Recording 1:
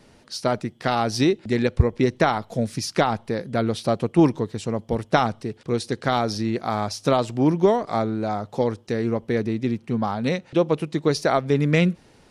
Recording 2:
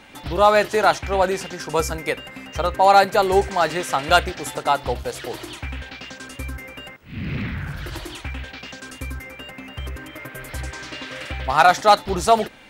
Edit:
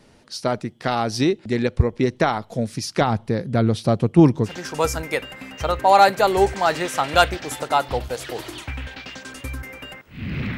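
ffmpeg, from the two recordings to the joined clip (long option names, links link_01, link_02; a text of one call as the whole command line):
ffmpeg -i cue0.wav -i cue1.wav -filter_complex "[0:a]asettb=1/sr,asplit=3[link_01][link_02][link_03];[link_01]atrim=end=3.014[link_04];[link_02]atrim=start=3.01:end=4.53,asetpts=PTS-STARTPTS,afade=type=in:duration=0.004:curve=qsin,afade=type=out:start_time=1.516:duration=0.004:curve=qsin,equalizer=frequency=91:width_type=o:width=2.8:gain=8.5[link_05];[link_03]atrim=start=4.526[link_06];[link_04][link_05]acrossfade=duration=0.004:curve1=hsin:curve2=qsin[link_07];[link_07][link_06]acrossfade=duration=0.004:curve1=qsin:curve2=hsin,apad=whole_dur=10.57,atrim=end=10.57,atrim=end=4.53,asetpts=PTS-STARTPTS[link_08];[1:a]atrim=start=1.38:end=7.52,asetpts=PTS-STARTPTS[link_09];[link_08][link_09]acrossfade=duration=0.1:curve1=tri:curve2=tri" out.wav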